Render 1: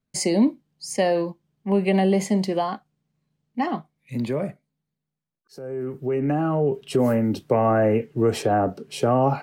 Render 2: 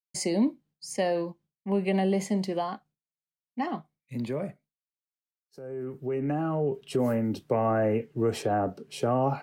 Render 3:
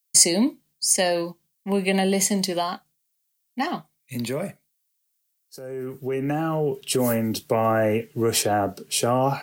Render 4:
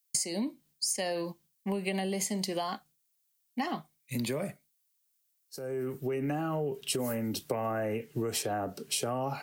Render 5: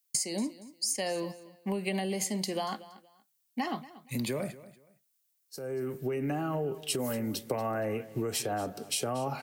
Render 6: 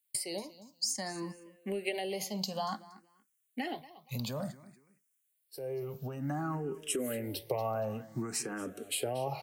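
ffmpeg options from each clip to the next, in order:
ffmpeg -i in.wav -af "agate=range=-33dB:threshold=-45dB:ratio=3:detection=peak,volume=-6dB" out.wav
ffmpeg -i in.wav -af "crystalizer=i=6:c=0,volume=3dB" out.wav
ffmpeg -i in.wav -af "acompressor=threshold=-27dB:ratio=12,volume=-1.5dB" out.wav
ffmpeg -i in.wav -af "aecho=1:1:235|470:0.133|0.0333" out.wav
ffmpeg -i in.wav -filter_complex "[0:a]asplit=2[link_01][link_02];[link_02]afreqshift=0.56[link_03];[link_01][link_03]amix=inputs=2:normalize=1" out.wav

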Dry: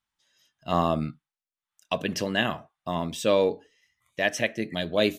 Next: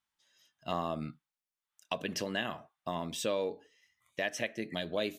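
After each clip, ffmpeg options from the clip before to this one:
ffmpeg -i in.wav -af "lowshelf=frequency=140:gain=-7.5,acompressor=threshold=-31dB:ratio=2.5,volume=-2dB" out.wav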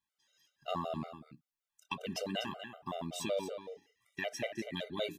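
ffmpeg -i in.wav -af "aecho=1:1:246:0.316,afftfilt=real='re*gt(sin(2*PI*5.3*pts/sr)*(1-2*mod(floor(b*sr/1024/390),2)),0)':imag='im*gt(sin(2*PI*5.3*pts/sr)*(1-2*mod(floor(b*sr/1024/390),2)),0)':win_size=1024:overlap=0.75" out.wav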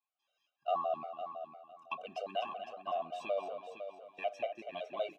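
ffmpeg -i in.wav -filter_complex "[0:a]asplit=3[link_01][link_02][link_03];[link_01]bandpass=frequency=730:width_type=q:width=8,volume=0dB[link_04];[link_02]bandpass=frequency=1090:width_type=q:width=8,volume=-6dB[link_05];[link_03]bandpass=frequency=2440:width_type=q:width=8,volume=-9dB[link_06];[link_04][link_05][link_06]amix=inputs=3:normalize=0,aecho=1:1:506|1012|1518:0.335|0.0737|0.0162,volume=9.5dB" out.wav

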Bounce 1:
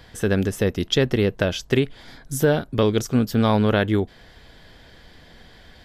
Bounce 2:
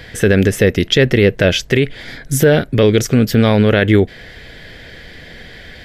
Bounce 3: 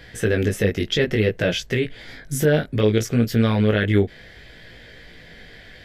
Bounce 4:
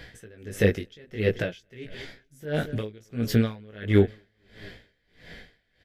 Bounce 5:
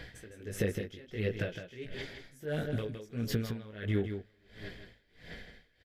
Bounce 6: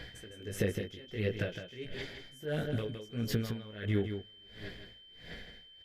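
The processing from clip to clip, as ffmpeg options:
ffmpeg -i in.wav -af "equalizer=frequency=125:width_type=o:width=1:gain=3,equalizer=frequency=500:width_type=o:width=1:gain=5,equalizer=frequency=1000:width_type=o:width=1:gain=-8,equalizer=frequency=2000:width_type=o:width=1:gain=10,alimiter=level_in=10dB:limit=-1dB:release=50:level=0:latency=1,volume=-1dB" out.wav
ffmpeg -i in.wav -af "flanger=delay=17:depth=3:speed=0.61,volume=-5dB" out.wav
ffmpeg -i in.wav -af "aecho=1:1:222|444|666|888|1110:0.0794|0.0477|0.0286|0.0172|0.0103,aeval=exprs='val(0)*pow(10,-30*(0.5-0.5*cos(2*PI*1.5*n/s))/20)':channel_layout=same" out.wav
ffmpeg -i in.wav -af "acompressor=threshold=-27dB:ratio=6,aphaser=in_gain=1:out_gain=1:delay=3.8:decay=0.27:speed=1.5:type=sinusoidal,aecho=1:1:161:0.398,volume=-3.5dB" out.wav
ffmpeg -i in.wav -af "aeval=exprs='val(0)+0.002*sin(2*PI*3100*n/s)':channel_layout=same" out.wav

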